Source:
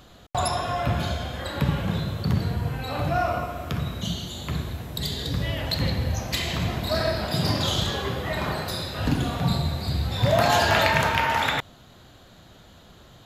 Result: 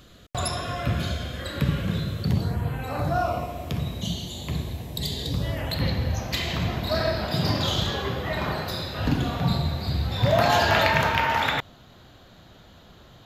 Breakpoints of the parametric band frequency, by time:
parametric band −12 dB 0.54 octaves
0:02.23 840 Hz
0:02.67 6,100 Hz
0:03.42 1,400 Hz
0:05.30 1,400 Hz
0:05.90 9,100 Hz

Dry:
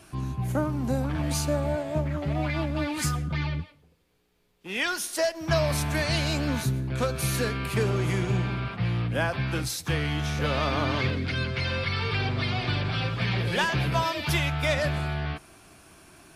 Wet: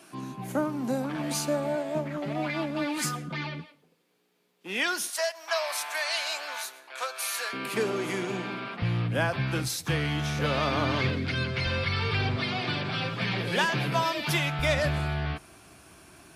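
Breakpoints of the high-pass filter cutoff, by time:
high-pass filter 24 dB per octave
180 Hz
from 0:05.10 700 Hz
from 0:07.53 210 Hz
from 0:08.82 89 Hz
from 0:11.66 42 Hz
from 0:12.37 140 Hz
from 0:14.59 42 Hz

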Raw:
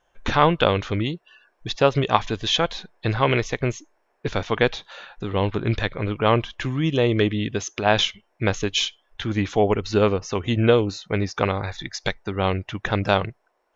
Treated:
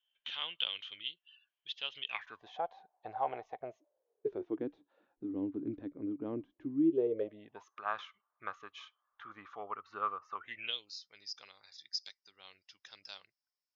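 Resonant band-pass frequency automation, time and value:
resonant band-pass, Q 12
0:02.06 3,100 Hz
0:02.46 760 Hz
0:03.56 760 Hz
0:04.67 290 Hz
0:06.79 290 Hz
0:07.77 1,200 Hz
0:10.36 1,200 Hz
0:10.89 5,000 Hz

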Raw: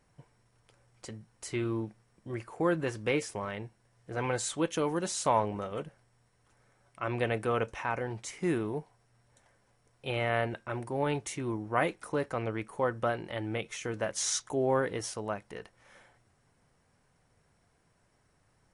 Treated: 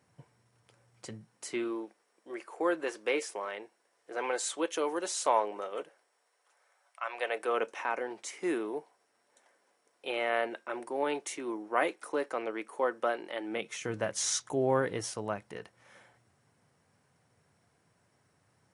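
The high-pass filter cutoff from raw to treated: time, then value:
high-pass filter 24 dB per octave
0:01.06 87 Hz
0:01.79 340 Hz
0:05.82 340 Hz
0:07.05 700 Hz
0:07.62 290 Hz
0:13.43 290 Hz
0:13.95 87 Hz

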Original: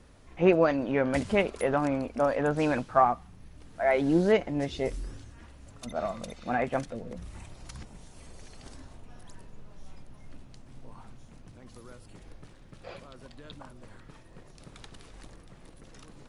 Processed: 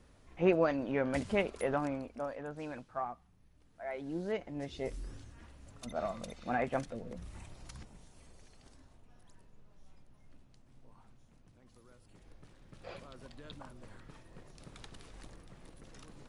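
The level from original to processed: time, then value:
0:01.75 −6 dB
0:02.44 −16 dB
0:04.04 −16 dB
0:05.18 −4.5 dB
0:07.57 −4.5 dB
0:08.72 −12.5 dB
0:11.90 −12.5 dB
0:12.92 −3 dB

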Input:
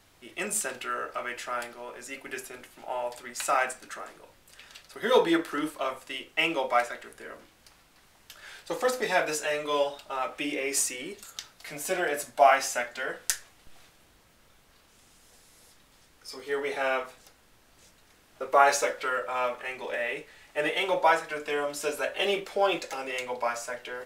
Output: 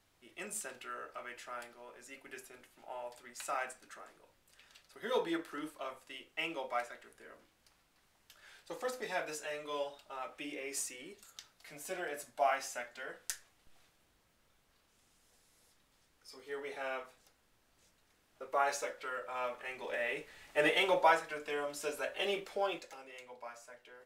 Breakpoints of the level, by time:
0:19.03 −12 dB
0:20.69 −1 dB
0:21.39 −8 dB
0:22.54 −8 dB
0:23.09 −18.5 dB

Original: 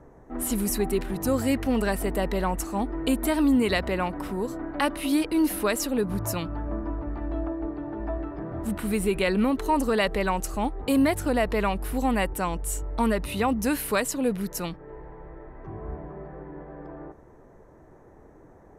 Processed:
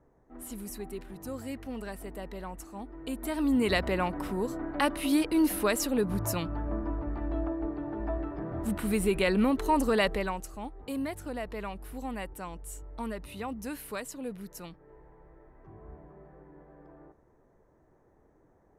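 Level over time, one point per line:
0:02.97 −14 dB
0:03.72 −2 dB
0:10.07 −2 dB
0:10.51 −12.5 dB

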